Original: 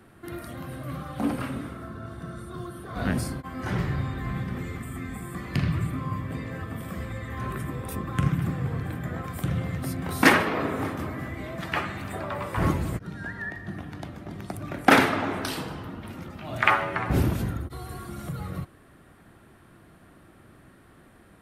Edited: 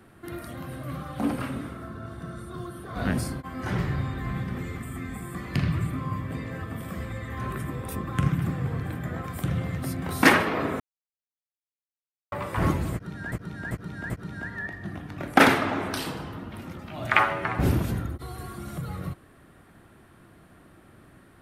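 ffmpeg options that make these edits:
-filter_complex "[0:a]asplit=7[a][b][c][d][e][f][g];[a]atrim=end=10.8,asetpts=PTS-STARTPTS,afade=t=out:st=10.796:d=0.004:c=hsin[h];[b]atrim=start=10.8:end=12.32,asetpts=PTS-STARTPTS,volume=0[i];[c]atrim=start=12.32:end=13.322,asetpts=PTS-STARTPTS,afade=t=in:d=0.004:c=hsin[j];[d]atrim=start=12.928:end=13.322[k];[e]atrim=start=12.928:end=13.322[l];[f]atrim=start=12.928:end=14.012[m];[g]atrim=start=14.688[n];[h][i][j]concat=n=3:v=0:a=1[o];[o][k]acrossfade=d=0.004:c1=hsin:c2=hsin[p];[p][l]acrossfade=d=0.004:c1=hsin:c2=hsin[q];[q][m]acrossfade=d=0.004:c1=hsin:c2=hsin[r];[r][n]acrossfade=d=0.004:c1=hsin:c2=hsin"

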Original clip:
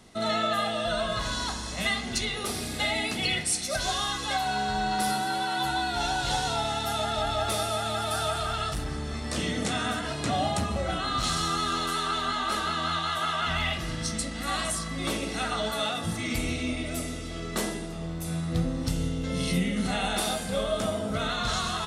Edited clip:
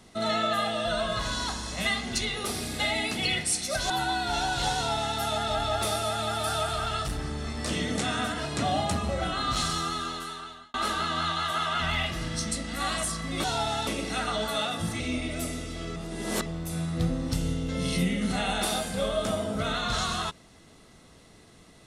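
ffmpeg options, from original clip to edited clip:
-filter_complex "[0:a]asplit=8[a][b][c][d][e][f][g][h];[a]atrim=end=3.902[i];[b]atrim=start=5.568:end=12.41,asetpts=PTS-STARTPTS,afade=t=out:st=5.672:d=1.17[j];[c]atrim=start=12.41:end=15.112,asetpts=PTS-STARTPTS,afade=t=in:d=0.004:c=hsin[k];[d]atrim=start=6.418:end=6.852[l];[e]atrim=start=15.108:end=16.242[m];[f]atrim=start=16.548:end=17.512[n];[g]atrim=start=17.508:end=18.012,asetpts=PTS-STARTPTS,areverse[o];[h]atrim=start=18.008[p];[j][k]concat=n=2:v=0:a=1[q];[i][q]acrossfade=d=0.004:c1=hsin:c2=hsin[r];[r][l]acrossfade=d=0.004:c1=hsin:c2=hsin[s];[s][m]acrossfade=d=0.004:c1=hsin:c2=hsin[t];[t][n]acrossfade=d=0.004:c1=hsin:c2=hsin[u];[u][o]acrossfade=d=0.004:c1=hsin:c2=hsin[v];[v][p]acrossfade=d=0.004:c1=hsin:c2=hsin"

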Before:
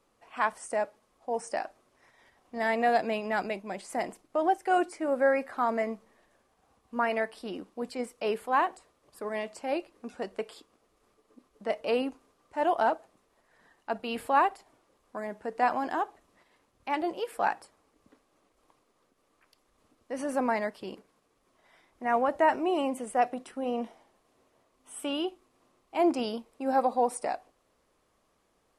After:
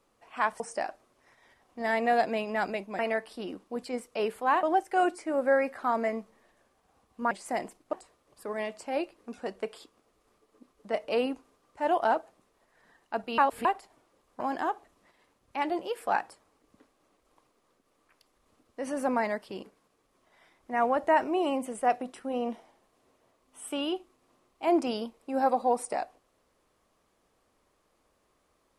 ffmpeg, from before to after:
-filter_complex "[0:a]asplit=9[a][b][c][d][e][f][g][h][i];[a]atrim=end=0.602[j];[b]atrim=start=1.358:end=3.752[k];[c]atrim=start=7.048:end=8.692[l];[d]atrim=start=4.368:end=7.052[m];[e]atrim=start=3.748:end=4.372[n];[f]atrim=start=8.688:end=14.142[o];[g]atrim=start=14.138:end=14.412,asetpts=PTS-STARTPTS,areverse[p];[h]atrim=start=14.408:end=15.162[q];[i]atrim=start=15.718[r];[j][k]acrossfade=d=0.004:c1=hsin:c2=hsin[s];[s][l]acrossfade=d=0.004:c1=hsin:c2=hsin[t];[t][m]acrossfade=d=0.004:c1=hsin:c2=hsin[u];[u][n]acrossfade=d=0.004:c1=hsin:c2=hsin[v];[v][o]acrossfade=d=0.004:c1=hsin:c2=hsin[w];[w][p]acrossfade=d=0.004:c1=hsin:c2=hsin[x];[x][q]acrossfade=d=0.004:c1=hsin:c2=hsin[y];[y][r]acrossfade=d=0.004:c1=hsin:c2=hsin"

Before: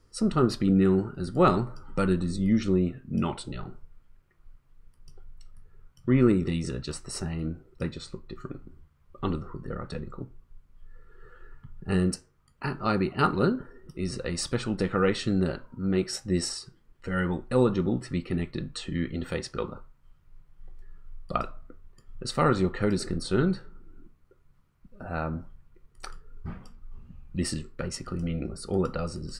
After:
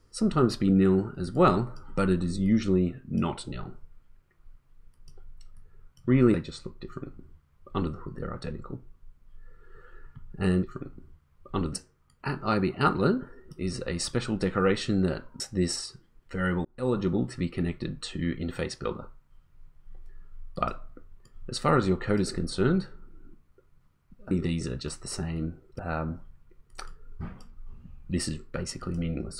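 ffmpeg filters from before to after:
-filter_complex "[0:a]asplit=8[a][b][c][d][e][f][g][h];[a]atrim=end=6.342[i];[b]atrim=start=7.818:end=12.112[j];[c]atrim=start=8.318:end=9.422[k];[d]atrim=start=12.108:end=15.782[l];[e]atrim=start=16.128:end=17.38,asetpts=PTS-STARTPTS,afade=t=out:st=1.248:d=0.004:c=hsin[m];[f]atrim=start=17.38:end=25.042,asetpts=PTS-STARTPTS,afade=t=in:d=0.43[n];[g]atrim=start=6.338:end=7.822[o];[h]atrim=start=25.038[p];[i][j]acrossfade=d=0.004:c1=hsin:c2=hsin[q];[q][k]acrossfade=d=0.004:c1=hsin:c2=hsin[r];[r][l]acrossfade=d=0.004:c1=hsin:c2=hsin[s];[m][n]concat=n=2:v=0:a=1[t];[s][t]acrossfade=d=0.004:c1=hsin:c2=hsin[u];[u][o]acrossfade=d=0.004:c1=hsin:c2=hsin[v];[v][p]acrossfade=d=0.004:c1=hsin:c2=hsin"

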